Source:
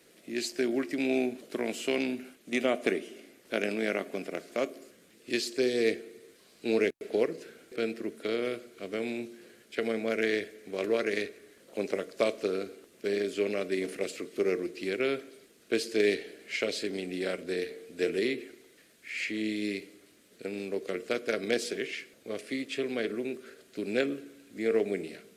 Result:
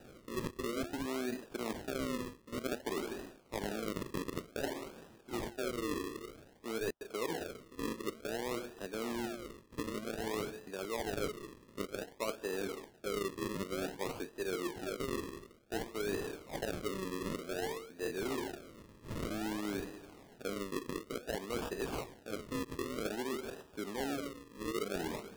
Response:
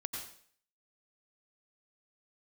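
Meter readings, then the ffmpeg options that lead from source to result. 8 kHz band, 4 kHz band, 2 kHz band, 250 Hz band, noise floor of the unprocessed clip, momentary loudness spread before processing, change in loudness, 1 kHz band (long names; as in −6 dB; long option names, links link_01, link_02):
−2.5 dB, −6.5 dB, −9.0 dB, −6.5 dB, −60 dBFS, 11 LU, −7.5 dB, +0.5 dB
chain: -af "areverse,acompressor=threshold=-42dB:ratio=6,areverse,acrusher=samples=40:mix=1:aa=0.000001:lfo=1:lforange=40:lforate=0.54,volume=6dB"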